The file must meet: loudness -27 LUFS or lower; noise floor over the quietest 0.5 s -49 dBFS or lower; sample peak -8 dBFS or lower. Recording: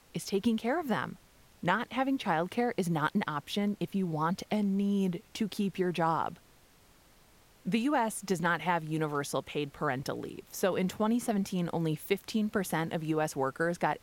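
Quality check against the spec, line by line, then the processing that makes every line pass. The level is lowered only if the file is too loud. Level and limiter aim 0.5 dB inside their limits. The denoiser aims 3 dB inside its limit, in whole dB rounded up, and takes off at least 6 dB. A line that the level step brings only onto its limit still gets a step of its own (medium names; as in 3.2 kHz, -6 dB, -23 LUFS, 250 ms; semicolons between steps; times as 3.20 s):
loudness -32.0 LUFS: pass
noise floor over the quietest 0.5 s -61 dBFS: pass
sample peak -12.5 dBFS: pass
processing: none needed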